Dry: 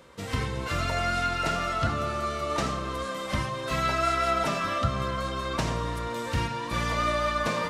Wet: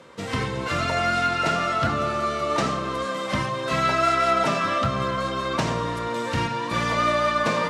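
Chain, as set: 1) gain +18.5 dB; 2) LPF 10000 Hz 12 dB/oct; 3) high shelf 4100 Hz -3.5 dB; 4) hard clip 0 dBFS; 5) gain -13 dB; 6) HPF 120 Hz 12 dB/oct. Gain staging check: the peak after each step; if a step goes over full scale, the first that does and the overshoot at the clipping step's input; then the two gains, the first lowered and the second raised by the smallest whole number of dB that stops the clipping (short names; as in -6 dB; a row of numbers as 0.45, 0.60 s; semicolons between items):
+6.0, +6.0, +6.0, 0.0, -13.0, -9.0 dBFS; step 1, 6.0 dB; step 1 +12.5 dB, step 5 -7 dB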